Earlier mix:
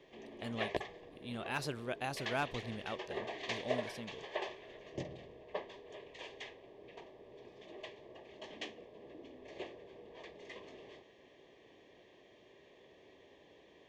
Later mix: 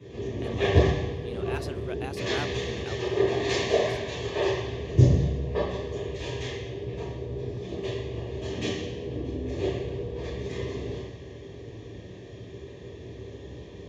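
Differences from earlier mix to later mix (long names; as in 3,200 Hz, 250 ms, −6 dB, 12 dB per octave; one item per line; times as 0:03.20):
background: add bass and treble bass +10 dB, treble +4 dB
reverb: on, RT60 1.0 s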